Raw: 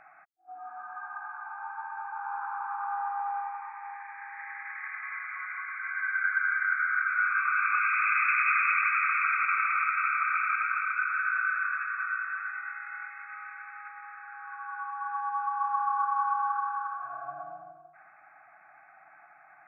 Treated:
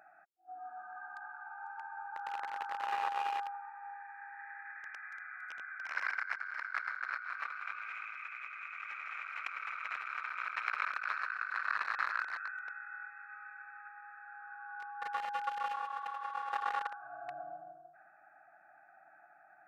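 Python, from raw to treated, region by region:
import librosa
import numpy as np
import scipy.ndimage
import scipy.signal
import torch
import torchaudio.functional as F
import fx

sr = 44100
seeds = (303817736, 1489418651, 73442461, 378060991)

y = fx.chain(x, sr, fx.highpass(hz=360.0, slope=24),
    fx.peak_eq(hz=1100.0, db=-4.5, octaves=0.41), at=(15.25, 15.77))
y = fx.wiener(y, sr, points=41)
y = fx.highpass(y, sr, hz=940.0, slope=6)
y = fx.over_compress(y, sr, threshold_db=-42.0, ratio=-1.0)
y = F.gain(torch.from_numpy(y), 2.5).numpy()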